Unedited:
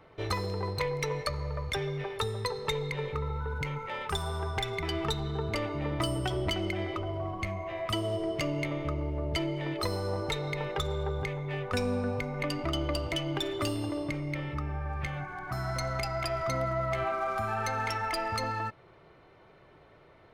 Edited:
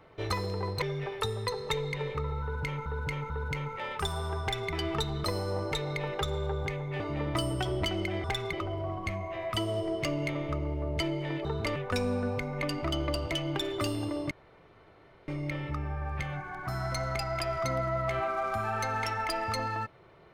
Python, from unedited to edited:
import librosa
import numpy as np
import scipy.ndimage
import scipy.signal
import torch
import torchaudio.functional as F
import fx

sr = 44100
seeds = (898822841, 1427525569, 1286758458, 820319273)

y = fx.edit(x, sr, fx.cut(start_s=0.82, length_s=0.98),
    fx.repeat(start_s=3.4, length_s=0.44, count=3),
    fx.duplicate(start_s=4.52, length_s=0.29, to_s=6.89),
    fx.swap(start_s=5.34, length_s=0.31, other_s=9.81, other_length_s=1.76),
    fx.insert_room_tone(at_s=14.12, length_s=0.97), tone=tone)